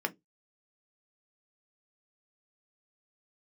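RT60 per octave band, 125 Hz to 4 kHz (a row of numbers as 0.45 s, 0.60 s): 0.25 s, 0.20 s, 0.20 s, 0.10 s, 0.15 s, 0.15 s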